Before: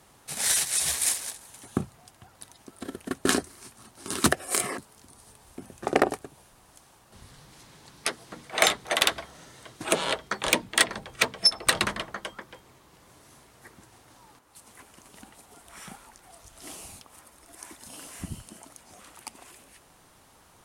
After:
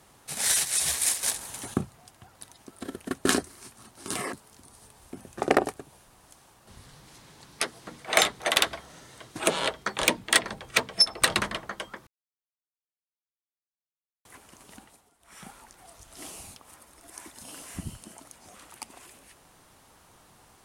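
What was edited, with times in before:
0:01.23–0:01.74: clip gain +9 dB
0:04.16–0:04.61: remove
0:12.52–0:14.70: silence
0:15.21–0:15.98: duck −15.5 dB, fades 0.34 s

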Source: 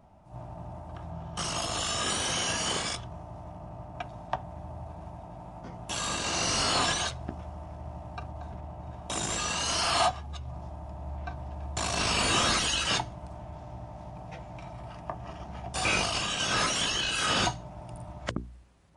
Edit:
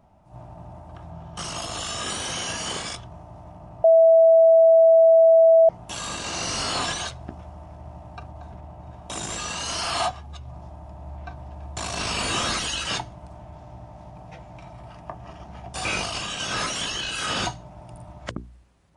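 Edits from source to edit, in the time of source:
0:03.84–0:05.69: beep over 655 Hz −10.5 dBFS

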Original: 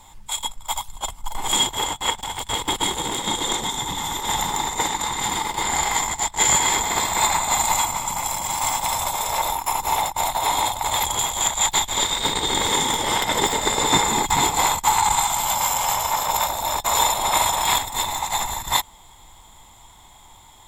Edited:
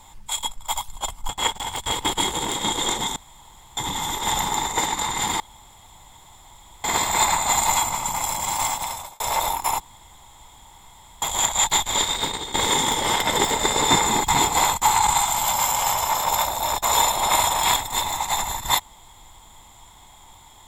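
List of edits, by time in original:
0:01.29–0:01.92: remove
0:03.79: splice in room tone 0.61 s
0:05.42–0:06.86: fill with room tone
0:08.60–0:09.22: fade out
0:09.82–0:11.24: fill with room tone
0:11.93–0:12.56: fade out equal-power, to −16 dB

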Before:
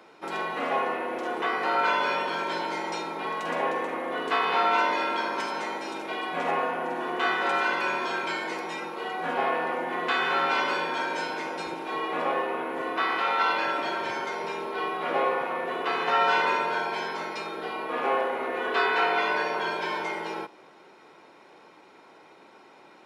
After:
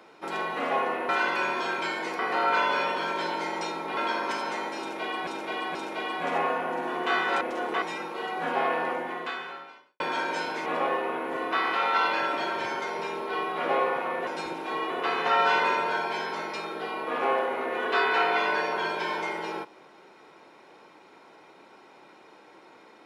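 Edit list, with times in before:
0:01.09–0:01.50: swap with 0:07.54–0:08.64
0:03.28–0:05.06: remove
0:05.88–0:06.36: repeat, 3 plays
0:09.73–0:10.82: fade out quadratic
0:11.48–0:12.11: move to 0:15.72

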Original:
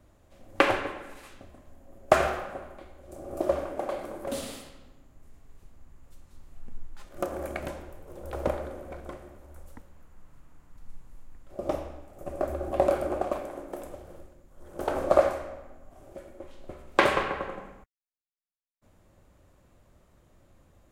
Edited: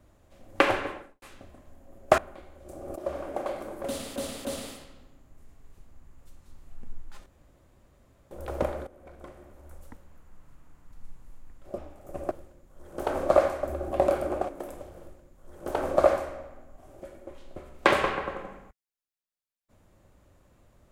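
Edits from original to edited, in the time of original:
0:00.90–0:01.22: fade out and dull
0:02.18–0:02.61: remove
0:03.39–0:03.73: fade in, from −14 dB
0:04.30–0:04.59: repeat, 3 plays
0:07.11–0:08.16: fill with room tone
0:08.72–0:09.54: fade in, from −15.5 dB
0:11.63–0:11.90: remove
0:13.29–0:13.62: remove
0:14.12–0:15.44: duplicate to 0:12.43

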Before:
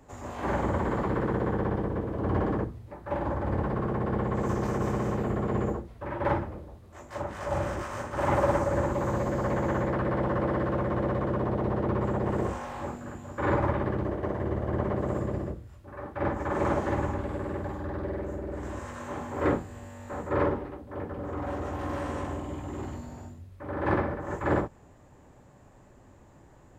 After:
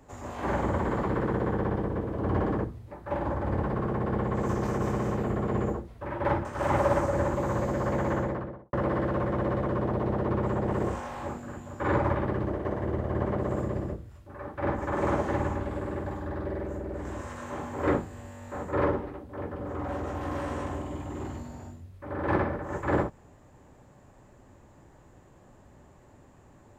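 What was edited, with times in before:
0:06.45–0:08.03: remove
0:09.68–0:10.31: fade out and dull

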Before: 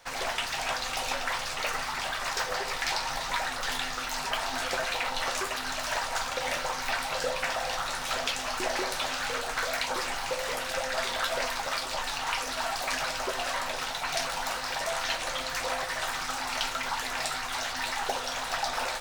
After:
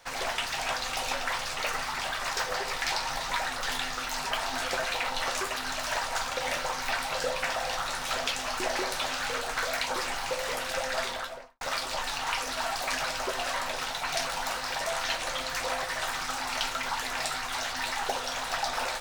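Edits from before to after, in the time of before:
0:10.96–0:11.61: fade out and dull

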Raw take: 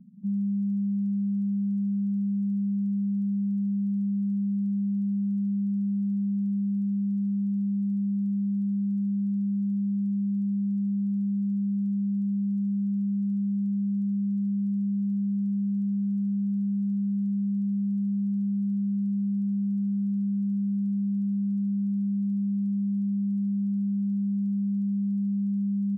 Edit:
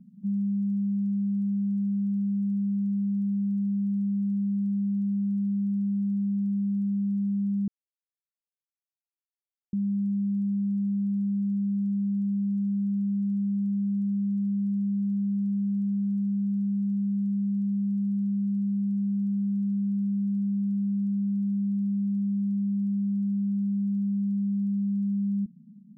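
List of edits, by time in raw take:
0:07.68–0:09.73: silence
0:18.10–0:18.61: remove

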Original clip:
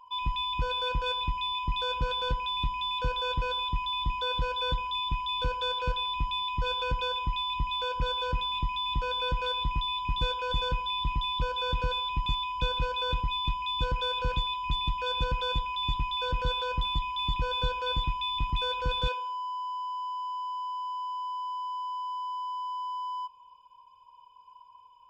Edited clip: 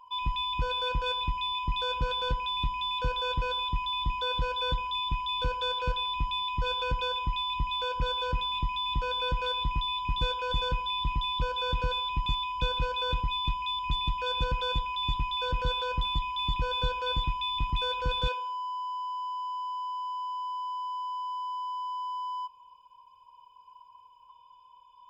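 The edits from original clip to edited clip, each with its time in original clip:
0:13.79–0:14.59: remove

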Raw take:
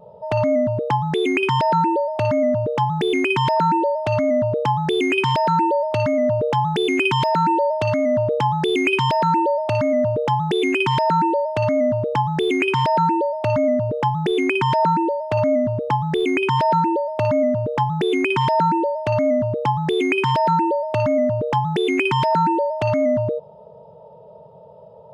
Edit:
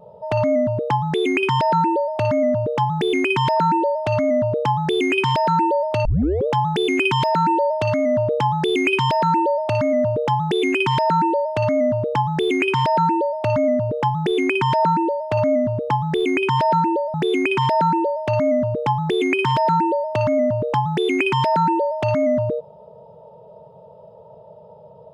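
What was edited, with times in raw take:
0:06.05: tape start 0.42 s
0:17.14–0:17.93: remove

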